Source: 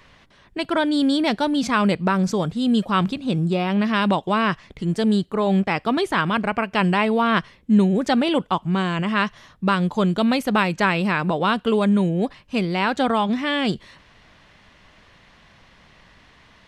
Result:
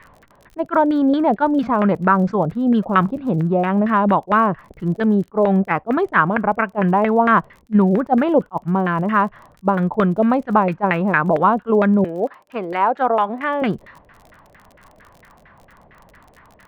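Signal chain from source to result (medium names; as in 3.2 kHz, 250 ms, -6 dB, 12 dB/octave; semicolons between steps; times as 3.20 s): 12.04–13.62 s: high-pass 390 Hz 12 dB/octave; LFO low-pass saw down 4.4 Hz 520–1900 Hz; crackle 40 per s -37 dBFS; attacks held to a fixed rise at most 570 dB/s; trim +2 dB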